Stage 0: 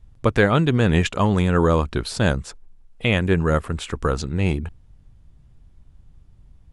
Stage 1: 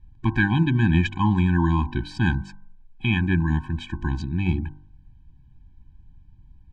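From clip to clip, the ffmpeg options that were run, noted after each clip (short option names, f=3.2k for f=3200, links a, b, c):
-af "lowpass=3.5k,bandreject=f=48.97:t=h:w=4,bandreject=f=97.94:t=h:w=4,bandreject=f=146.91:t=h:w=4,bandreject=f=195.88:t=h:w=4,bandreject=f=244.85:t=h:w=4,bandreject=f=293.82:t=h:w=4,bandreject=f=342.79:t=h:w=4,bandreject=f=391.76:t=h:w=4,bandreject=f=440.73:t=h:w=4,bandreject=f=489.7:t=h:w=4,bandreject=f=538.67:t=h:w=4,bandreject=f=587.64:t=h:w=4,bandreject=f=636.61:t=h:w=4,bandreject=f=685.58:t=h:w=4,bandreject=f=734.55:t=h:w=4,bandreject=f=783.52:t=h:w=4,bandreject=f=832.49:t=h:w=4,bandreject=f=881.46:t=h:w=4,bandreject=f=930.43:t=h:w=4,bandreject=f=979.4:t=h:w=4,bandreject=f=1.02837k:t=h:w=4,bandreject=f=1.07734k:t=h:w=4,bandreject=f=1.12631k:t=h:w=4,bandreject=f=1.17528k:t=h:w=4,bandreject=f=1.22425k:t=h:w=4,bandreject=f=1.27322k:t=h:w=4,bandreject=f=1.32219k:t=h:w=4,bandreject=f=1.37116k:t=h:w=4,bandreject=f=1.42013k:t=h:w=4,bandreject=f=1.4691k:t=h:w=4,bandreject=f=1.51807k:t=h:w=4,bandreject=f=1.56704k:t=h:w=4,afftfilt=real='re*eq(mod(floor(b*sr/1024/370),2),0)':imag='im*eq(mod(floor(b*sr/1024/370),2),0)':win_size=1024:overlap=0.75"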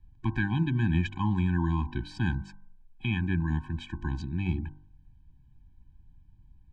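-filter_complex "[0:a]acrossover=split=210[a][b];[b]acompressor=threshold=-29dB:ratio=1.5[c];[a][c]amix=inputs=2:normalize=0,volume=-6dB"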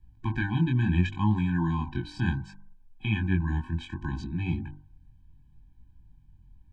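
-af "flanger=delay=18:depth=5.9:speed=0.68,volume=4dB"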